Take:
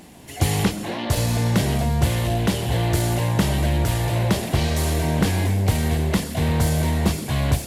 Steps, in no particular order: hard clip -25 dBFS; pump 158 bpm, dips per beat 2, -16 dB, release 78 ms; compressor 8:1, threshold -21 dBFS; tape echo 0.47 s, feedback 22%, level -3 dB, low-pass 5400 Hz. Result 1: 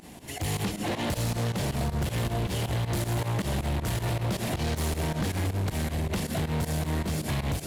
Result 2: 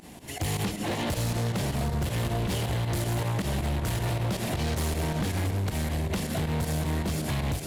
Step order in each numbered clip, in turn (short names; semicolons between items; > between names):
compressor > tape echo > hard clip > pump; pump > tape echo > compressor > hard clip